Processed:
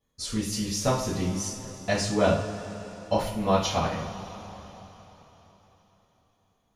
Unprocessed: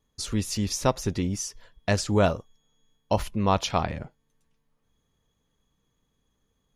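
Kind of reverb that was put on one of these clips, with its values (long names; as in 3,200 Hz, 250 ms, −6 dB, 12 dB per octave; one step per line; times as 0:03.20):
coupled-rooms reverb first 0.42 s, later 4.1 s, from −18 dB, DRR −9.5 dB
level −9.5 dB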